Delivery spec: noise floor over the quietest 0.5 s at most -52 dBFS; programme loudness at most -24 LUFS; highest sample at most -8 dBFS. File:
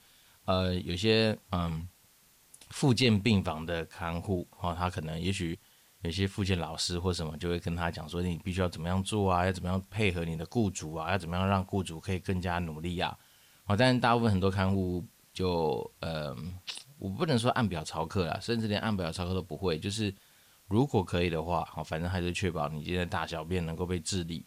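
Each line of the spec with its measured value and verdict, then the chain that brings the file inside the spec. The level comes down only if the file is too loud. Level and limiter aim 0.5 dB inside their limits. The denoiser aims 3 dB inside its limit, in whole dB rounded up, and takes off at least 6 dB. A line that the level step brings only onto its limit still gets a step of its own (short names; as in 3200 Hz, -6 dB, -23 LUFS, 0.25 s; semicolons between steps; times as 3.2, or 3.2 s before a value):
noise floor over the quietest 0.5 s -63 dBFS: OK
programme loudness -31.5 LUFS: OK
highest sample -13.0 dBFS: OK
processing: none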